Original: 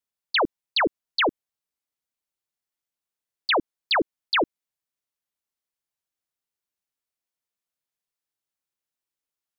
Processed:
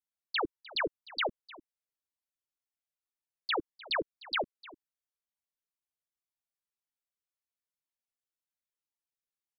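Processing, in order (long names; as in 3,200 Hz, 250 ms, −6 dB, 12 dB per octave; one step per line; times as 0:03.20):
single-tap delay 303 ms −19.5 dB
flanger whose copies keep moving one way falling 1.9 Hz
level −5.5 dB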